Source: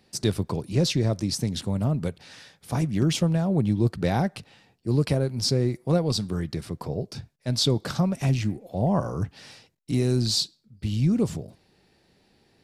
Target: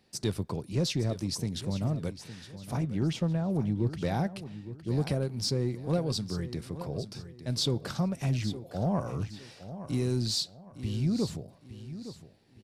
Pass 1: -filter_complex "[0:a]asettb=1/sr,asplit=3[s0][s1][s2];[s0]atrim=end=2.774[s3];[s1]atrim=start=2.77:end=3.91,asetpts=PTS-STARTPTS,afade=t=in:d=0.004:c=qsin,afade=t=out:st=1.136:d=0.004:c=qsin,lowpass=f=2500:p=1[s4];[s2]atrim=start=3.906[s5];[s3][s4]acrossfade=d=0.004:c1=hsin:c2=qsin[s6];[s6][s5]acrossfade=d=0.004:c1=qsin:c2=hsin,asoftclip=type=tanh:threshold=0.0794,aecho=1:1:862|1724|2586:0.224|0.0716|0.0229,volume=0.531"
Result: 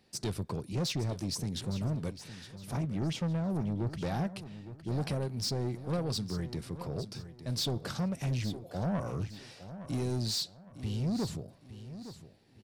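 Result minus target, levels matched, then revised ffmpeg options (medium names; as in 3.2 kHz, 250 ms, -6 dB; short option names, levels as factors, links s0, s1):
saturation: distortion +15 dB
-filter_complex "[0:a]asettb=1/sr,asplit=3[s0][s1][s2];[s0]atrim=end=2.774[s3];[s1]atrim=start=2.77:end=3.91,asetpts=PTS-STARTPTS,afade=t=in:d=0.004:c=qsin,afade=t=out:st=1.136:d=0.004:c=qsin,lowpass=f=2500:p=1[s4];[s2]atrim=start=3.906[s5];[s3][s4]acrossfade=d=0.004:c1=hsin:c2=qsin[s6];[s6][s5]acrossfade=d=0.004:c1=qsin:c2=hsin,asoftclip=type=tanh:threshold=0.299,aecho=1:1:862|1724|2586:0.224|0.0716|0.0229,volume=0.531"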